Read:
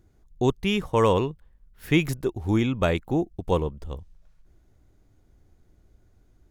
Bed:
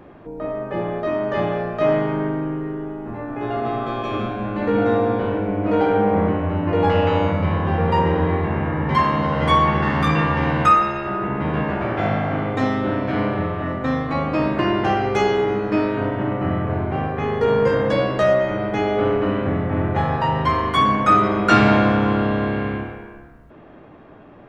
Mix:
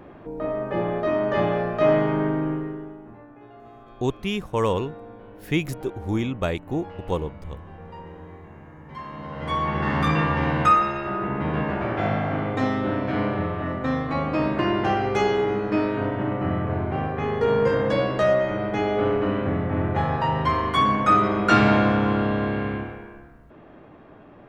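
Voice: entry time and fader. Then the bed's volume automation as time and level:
3.60 s, −2.5 dB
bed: 0:02.52 −0.5 dB
0:03.52 −22.5 dB
0:08.84 −22.5 dB
0:09.93 −3 dB

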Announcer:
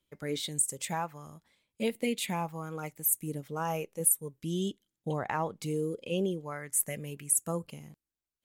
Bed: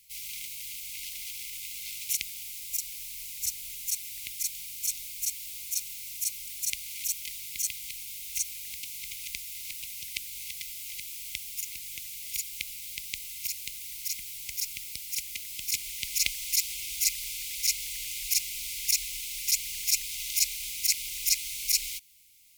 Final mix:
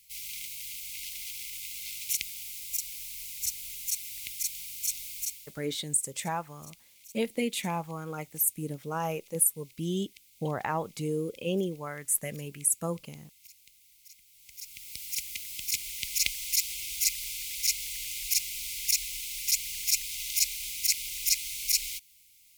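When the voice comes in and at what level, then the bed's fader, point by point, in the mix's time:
5.35 s, +1.0 dB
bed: 0:05.20 −0.5 dB
0:05.69 −20 dB
0:14.28 −20 dB
0:15.03 −0.5 dB

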